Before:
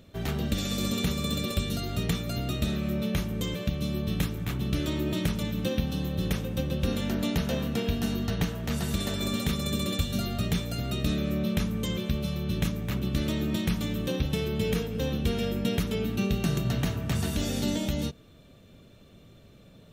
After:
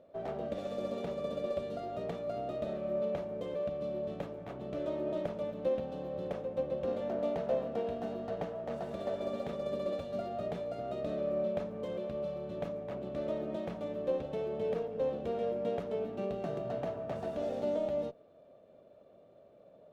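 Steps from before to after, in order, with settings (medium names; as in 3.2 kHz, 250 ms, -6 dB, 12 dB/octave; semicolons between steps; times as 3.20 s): band-pass filter 610 Hz, Q 4.2; sliding maximum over 3 samples; trim +7 dB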